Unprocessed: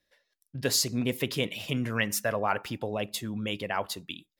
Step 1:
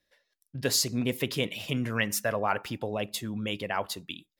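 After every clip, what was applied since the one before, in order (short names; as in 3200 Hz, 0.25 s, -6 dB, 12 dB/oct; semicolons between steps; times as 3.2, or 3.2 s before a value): nothing audible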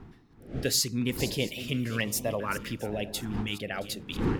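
regenerating reverse delay 0.336 s, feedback 45%, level -13.5 dB; wind noise 420 Hz -37 dBFS; stepped notch 2.5 Hz 560–1500 Hz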